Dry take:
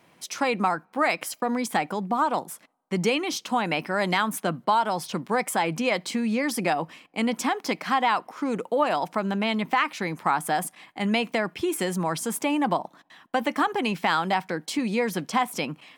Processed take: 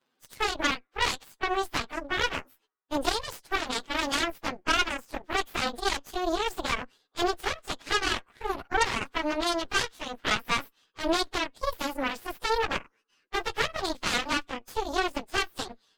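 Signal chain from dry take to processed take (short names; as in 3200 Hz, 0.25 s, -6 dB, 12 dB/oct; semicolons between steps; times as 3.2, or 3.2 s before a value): pitch shift by moving bins +7.5 st; high shelf 9900 Hz -6 dB; added harmonics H 3 -25 dB, 6 -11 dB, 7 -21 dB, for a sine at -12.5 dBFS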